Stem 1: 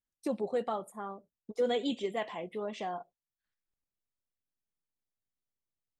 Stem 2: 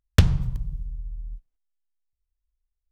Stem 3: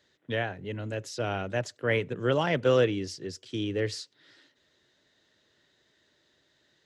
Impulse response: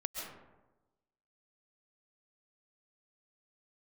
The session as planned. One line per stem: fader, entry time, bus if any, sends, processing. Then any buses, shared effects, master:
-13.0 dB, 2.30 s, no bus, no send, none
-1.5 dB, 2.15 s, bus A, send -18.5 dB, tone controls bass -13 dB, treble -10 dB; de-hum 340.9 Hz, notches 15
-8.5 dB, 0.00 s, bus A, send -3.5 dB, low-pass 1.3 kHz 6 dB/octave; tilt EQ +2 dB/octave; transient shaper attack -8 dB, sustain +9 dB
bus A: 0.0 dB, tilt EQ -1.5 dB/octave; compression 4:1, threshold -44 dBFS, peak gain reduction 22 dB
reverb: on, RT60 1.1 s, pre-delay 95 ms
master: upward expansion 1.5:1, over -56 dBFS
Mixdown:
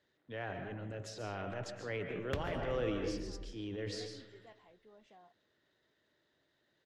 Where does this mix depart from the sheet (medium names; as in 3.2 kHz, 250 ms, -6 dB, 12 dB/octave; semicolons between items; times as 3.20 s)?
stem 1 -13.0 dB -> -24.0 dB; master: missing upward expansion 1.5:1, over -56 dBFS